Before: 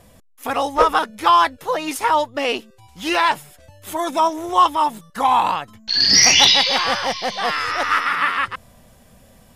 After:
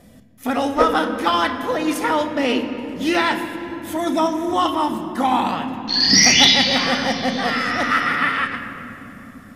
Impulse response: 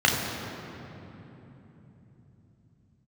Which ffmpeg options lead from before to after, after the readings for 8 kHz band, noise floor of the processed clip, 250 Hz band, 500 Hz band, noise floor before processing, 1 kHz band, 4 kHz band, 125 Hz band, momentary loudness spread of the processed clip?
-1.5 dB, -42 dBFS, +9.0 dB, +1.5 dB, -51 dBFS, -3.5 dB, -0.5 dB, +6.5 dB, 16 LU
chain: -filter_complex "[0:a]equalizer=f=250:t=o:w=1:g=10,equalizer=f=1k:t=o:w=1:g=-6,equalizer=f=2k:t=o:w=1:g=4,asplit=2[a][b];[1:a]atrim=start_sample=2205[c];[b][c]afir=irnorm=-1:irlink=0,volume=-21dB[d];[a][d]amix=inputs=2:normalize=0,volume=-2dB"

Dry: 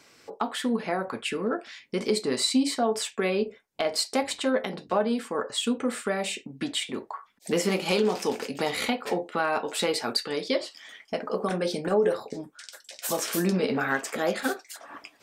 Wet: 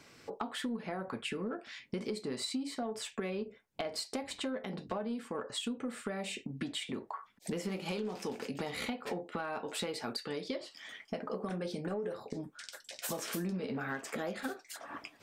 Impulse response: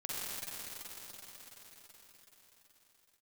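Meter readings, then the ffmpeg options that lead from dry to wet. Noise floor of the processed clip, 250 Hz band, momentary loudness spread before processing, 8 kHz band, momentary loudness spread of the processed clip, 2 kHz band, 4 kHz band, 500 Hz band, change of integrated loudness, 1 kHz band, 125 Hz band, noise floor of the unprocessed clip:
-62 dBFS, -9.5 dB, 11 LU, -11.0 dB, 7 LU, -11.0 dB, -10.5 dB, -12.0 dB, -11.0 dB, -11.5 dB, -7.0 dB, -60 dBFS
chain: -filter_complex "[0:a]bass=f=250:g=7,treble=f=4k:g=-3,asplit=2[a][b];[b]asoftclip=type=tanh:threshold=-20.5dB,volume=-8dB[c];[a][c]amix=inputs=2:normalize=0,acompressor=threshold=-31dB:ratio=5,volume=-4.5dB"

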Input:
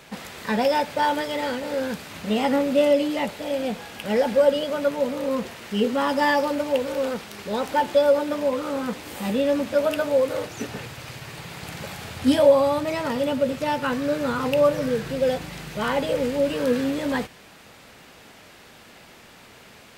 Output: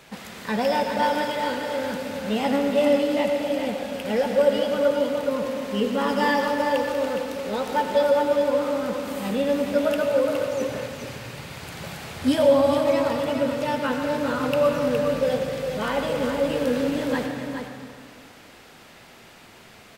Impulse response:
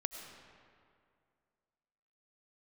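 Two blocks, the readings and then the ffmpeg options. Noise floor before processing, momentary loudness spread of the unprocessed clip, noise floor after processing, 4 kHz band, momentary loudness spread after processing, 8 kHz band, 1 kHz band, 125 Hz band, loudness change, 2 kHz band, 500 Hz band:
-49 dBFS, 14 LU, -48 dBFS, -0.5 dB, 12 LU, -1.0 dB, 0.0 dB, 0.0 dB, 0.0 dB, 0.0 dB, 0.0 dB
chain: -filter_complex "[0:a]aecho=1:1:415:0.447[a];[1:a]atrim=start_sample=2205,asetrate=48510,aresample=44100[b];[a][b]afir=irnorm=-1:irlink=0"

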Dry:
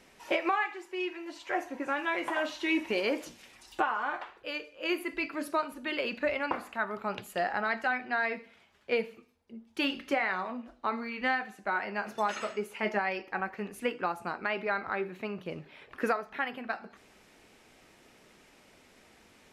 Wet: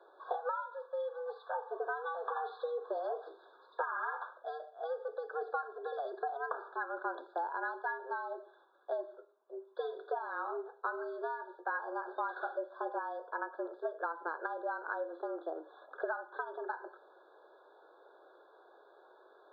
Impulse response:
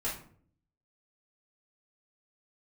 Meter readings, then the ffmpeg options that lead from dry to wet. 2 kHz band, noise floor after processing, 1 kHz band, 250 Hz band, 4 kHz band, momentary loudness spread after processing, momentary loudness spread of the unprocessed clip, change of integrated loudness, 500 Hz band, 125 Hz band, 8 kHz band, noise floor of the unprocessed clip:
-9.5 dB, -63 dBFS, -4.0 dB, -15.5 dB, -22.0 dB, 7 LU, 9 LU, -7.0 dB, -4.0 dB, under -40 dB, under -25 dB, -61 dBFS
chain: -af "acompressor=threshold=-34dB:ratio=6,highpass=f=180:t=q:w=0.5412,highpass=f=180:t=q:w=1.307,lowpass=f=2.9k:t=q:w=0.5176,lowpass=f=2.9k:t=q:w=0.7071,lowpass=f=2.9k:t=q:w=1.932,afreqshift=160,afftfilt=real='re*eq(mod(floor(b*sr/1024/1700),2),0)':imag='im*eq(mod(floor(b*sr/1024/1700),2),0)':win_size=1024:overlap=0.75,volume=1.5dB"

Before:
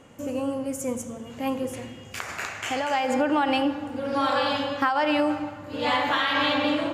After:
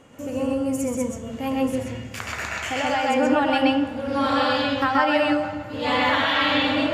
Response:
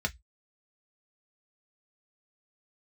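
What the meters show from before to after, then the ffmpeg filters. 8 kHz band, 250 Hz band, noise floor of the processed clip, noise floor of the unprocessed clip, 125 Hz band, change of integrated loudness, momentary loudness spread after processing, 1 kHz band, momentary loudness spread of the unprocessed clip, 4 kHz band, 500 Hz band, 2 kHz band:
+1.5 dB, +4.0 dB, -36 dBFS, -42 dBFS, +6.5 dB, +3.5 dB, 10 LU, +2.5 dB, 11 LU, +3.5 dB, +3.5 dB, +4.0 dB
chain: -filter_complex "[0:a]asplit=2[a][b];[1:a]atrim=start_sample=2205,adelay=128[c];[b][c]afir=irnorm=-1:irlink=0,volume=-4.5dB[d];[a][d]amix=inputs=2:normalize=0"

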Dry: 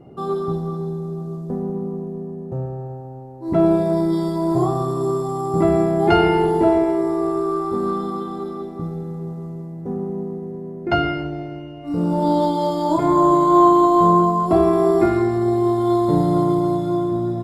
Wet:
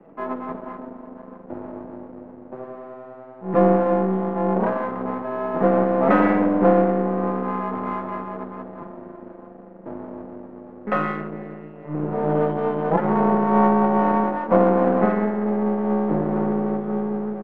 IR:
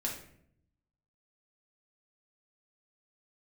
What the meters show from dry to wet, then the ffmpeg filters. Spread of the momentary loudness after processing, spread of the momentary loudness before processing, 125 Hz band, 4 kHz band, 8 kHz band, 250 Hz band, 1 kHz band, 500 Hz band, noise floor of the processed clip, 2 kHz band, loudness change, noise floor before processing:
21 LU, 15 LU, -4.5 dB, under -15 dB, n/a, -3.0 dB, -3.5 dB, -2.5 dB, -42 dBFS, +1.5 dB, -2.0 dB, -34 dBFS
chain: -filter_complex "[0:a]highpass=f=260:t=q:w=0.5412,highpass=f=260:t=q:w=1.307,lowpass=f=2.9k:t=q:w=0.5176,lowpass=f=2.9k:t=q:w=0.7071,lowpass=f=2.9k:t=q:w=1.932,afreqshift=-140,aecho=1:1:6.1:0.55,aeval=exprs='max(val(0),0)':c=same,acrossover=split=180 2100:gain=0.112 1 0.0794[a][b][c];[a][b][c]amix=inputs=3:normalize=0,volume=4.5dB"

